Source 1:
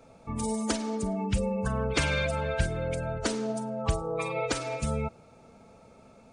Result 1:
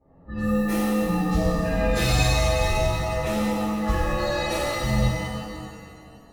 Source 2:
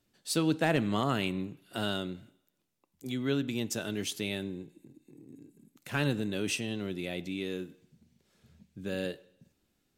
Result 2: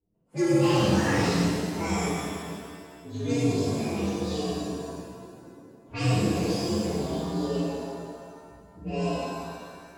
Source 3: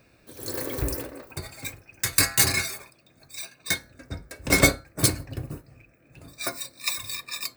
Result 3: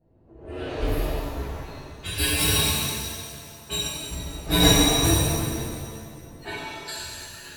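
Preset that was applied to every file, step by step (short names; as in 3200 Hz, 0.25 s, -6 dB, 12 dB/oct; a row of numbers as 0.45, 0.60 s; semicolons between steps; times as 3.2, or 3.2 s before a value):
inharmonic rescaling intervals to 126%; low-pass opened by the level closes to 570 Hz, open at -28.5 dBFS; shimmer reverb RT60 2 s, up +7 st, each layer -8 dB, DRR -10.5 dB; gain -3 dB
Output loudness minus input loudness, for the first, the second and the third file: +6.5, +5.5, +1.5 LU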